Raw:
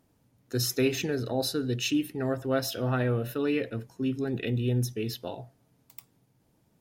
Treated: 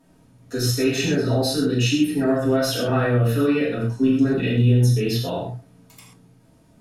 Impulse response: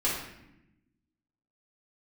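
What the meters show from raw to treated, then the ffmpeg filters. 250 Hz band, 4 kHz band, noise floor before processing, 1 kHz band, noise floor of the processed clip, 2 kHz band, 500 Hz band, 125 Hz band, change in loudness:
+9.5 dB, +7.0 dB, −69 dBFS, +8.0 dB, −56 dBFS, +8.0 dB, +7.5 dB, +11.0 dB, +9.0 dB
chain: -filter_complex "[0:a]alimiter=level_in=1dB:limit=-24dB:level=0:latency=1:release=87,volume=-1dB[link_01];[1:a]atrim=start_sample=2205,atrim=end_sample=3528,asetrate=24696,aresample=44100[link_02];[link_01][link_02]afir=irnorm=-1:irlink=0"

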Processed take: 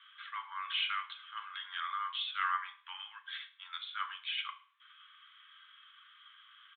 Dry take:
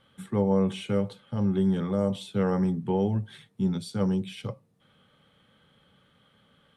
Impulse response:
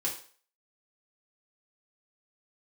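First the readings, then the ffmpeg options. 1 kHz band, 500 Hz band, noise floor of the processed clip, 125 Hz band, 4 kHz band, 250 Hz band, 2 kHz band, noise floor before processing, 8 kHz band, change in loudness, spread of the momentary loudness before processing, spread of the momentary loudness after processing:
+0.5 dB, below −40 dB, −63 dBFS, below −40 dB, +6.5 dB, below −40 dB, +7.5 dB, −65 dBFS, can't be measured, −10.5 dB, 10 LU, 23 LU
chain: -filter_complex "[0:a]asuperpass=centerf=2400:order=20:qfactor=0.58,asplit=2[link_01][link_02];[1:a]atrim=start_sample=2205[link_03];[link_02][link_03]afir=irnorm=-1:irlink=0,volume=-6dB[link_04];[link_01][link_04]amix=inputs=2:normalize=0,aresample=8000,aresample=44100,volume=3.5dB"

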